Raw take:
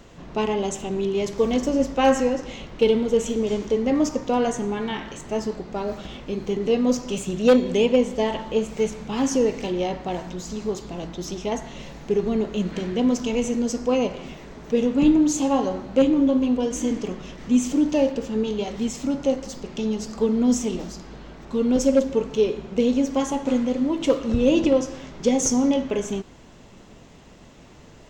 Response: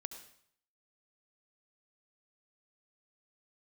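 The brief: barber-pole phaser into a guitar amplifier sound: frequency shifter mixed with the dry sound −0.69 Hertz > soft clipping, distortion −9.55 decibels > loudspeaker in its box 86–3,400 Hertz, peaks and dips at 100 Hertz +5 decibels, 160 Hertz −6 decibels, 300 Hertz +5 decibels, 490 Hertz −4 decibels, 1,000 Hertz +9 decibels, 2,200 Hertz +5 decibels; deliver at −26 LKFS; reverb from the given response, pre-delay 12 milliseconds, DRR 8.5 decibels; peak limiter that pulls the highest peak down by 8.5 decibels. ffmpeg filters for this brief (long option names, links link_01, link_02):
-filter_complex "[0:a]alimiter=limit=-17.5dB:level=0:latency=1,asplit=2[link_01][link_02];[1:a]atrim=start_sample=2205,adelay=12[link_03];[link_02][link_03]afir=irnorm=-1:irlink=0,volume=-5.5dB[link_04];[link_01][link_04]amix=inputs=2:normalize=0,asplit=2[link_05][link_06];[link_06]afreqshift=-0.69[link_07];[link_05][link_07]amix=inputs=2:normalize=1,asoftclip=threshold=-28dB,highpass=86,equalizer=frequency=100:width_type=q:width=4:gain=5,equalizer=frequency=160:width_type=q:width=4:gain=-6,equalizer=frequency=300:width_type=q:width=4:gain=5,equalizer=frequency=490:width_type=q:width=4:gain=-4,equalizer=frequency=1000:width_type=q:width=4:gain=9,equalizer=frequency=2200:width_type=q:width=4:gain=5,lowpass=frequency=3400:width=0.5412,lowpass=frequency=3400:width=1.3066,volume=7dB"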